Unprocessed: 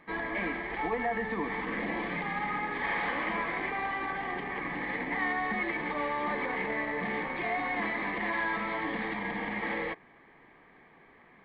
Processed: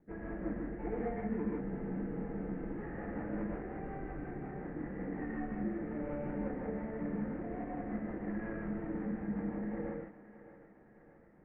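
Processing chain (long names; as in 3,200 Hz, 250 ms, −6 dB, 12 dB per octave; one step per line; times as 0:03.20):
running median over 41 samples
elliptic low-pass filter 2,100 Hz, stop band 70 dB
spectral tilt −1.5 dB per octave
rotating-speaker cabinet horn 5.5 Hz
parametric band 1,100 Hz −3 dB 0.23 octaves
on a send: feedback echo with a high-pass in the loop 618 ms, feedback 60%, high-pass 330 Hz, level −13.5 dB
on the sum: reverb whose tail is shaped and stops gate 180 ms rising, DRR −2.5 dB
frozen spectrum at 0:01.63, 1.11 s
level −5 dB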